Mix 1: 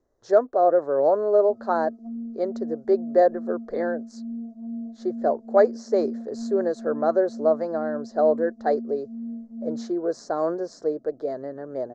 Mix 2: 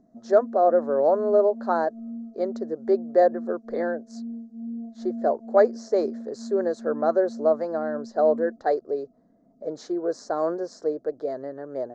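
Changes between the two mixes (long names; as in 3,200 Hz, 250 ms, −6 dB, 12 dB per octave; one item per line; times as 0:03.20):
background: entry −1.35 s
master: add low-shelf EQ 180 Hz −5 dB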